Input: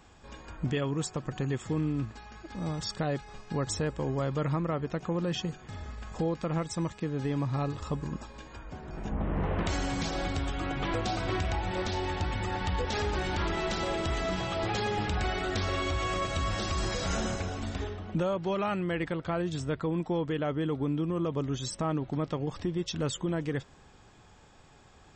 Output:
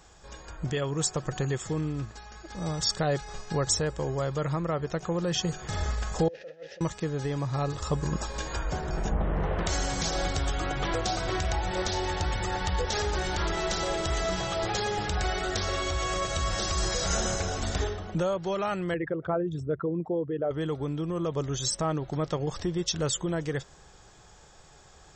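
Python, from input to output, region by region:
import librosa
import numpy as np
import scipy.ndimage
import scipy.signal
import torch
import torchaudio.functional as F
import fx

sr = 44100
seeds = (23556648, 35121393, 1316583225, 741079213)

y = fx.chain(x, sr, fx.delta_mod(bps=32000, step_db=-38.0),
    fx.over_compress(threshold_db=-35.0, ratio=-0.5),
    fx.vowel_filter(vowel='e'), at=(6.28, 6.81))
y = fx.chain(y, sr, fx.envelope_sharpen(power=2.0),
    fx.highpass(hz=99.0, slope=12),
    fx.high_shelf_res(hz=3300.0, db=-6.5, q=1.5), at=(18.94, 20.51))
y = fx.rider(y, sr, range_db=10, speed_s=0.5)
y = fx.graphic_eq_15(y, sr, hz=(100, 250, 1000, 2500, 6300), db=(-6, -11, -3, -5, 6))
y = y * 10.0 ** (5.0 / 20.0)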